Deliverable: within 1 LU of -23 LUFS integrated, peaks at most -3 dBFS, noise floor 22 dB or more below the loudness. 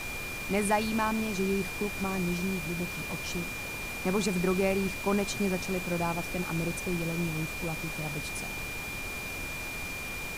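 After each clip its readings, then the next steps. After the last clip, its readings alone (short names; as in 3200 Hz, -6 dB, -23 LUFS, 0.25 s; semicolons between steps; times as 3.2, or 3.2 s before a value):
steady tone 2400 Hz; tone level -37 dBFS; noise floor -37 dBFS; noise floor target -53 dBFS; loudness -31.0 LUFS; peak -14.0 dBFS; loudness target -23.0 LUFS
-> notch 2400 Hz, Q 30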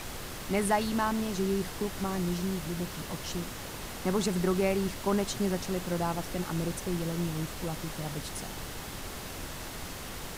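steady tone none; noise floor -41 dBFS; noise floor target -55 dBFS
-> noise print and reduce 14 dB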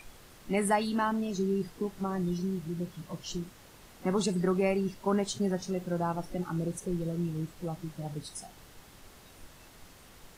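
noise floor -55 dBFS; loudness -32.5 LUFS; peak -15.0 dBFS; loudness target -23.0 LUFS
-> gain +9.5 dB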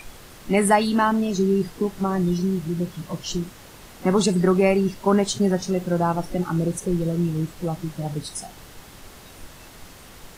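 loudness -23.0 LUFS; peak -5.5 dBFS; noise floor -45 dBFS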